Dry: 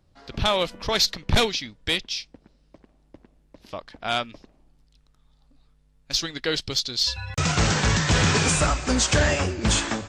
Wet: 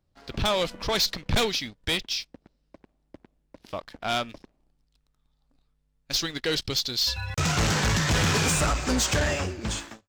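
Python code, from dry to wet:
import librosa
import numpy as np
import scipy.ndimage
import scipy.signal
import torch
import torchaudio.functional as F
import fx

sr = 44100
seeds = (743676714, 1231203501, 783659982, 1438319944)

y = fx.fade_out_tail(x, sr, length_s=1.16)
y = fx.leveller(y, sr, passes=2)
y = F.gain(torch.from_numpy(y), -6.5).numpy()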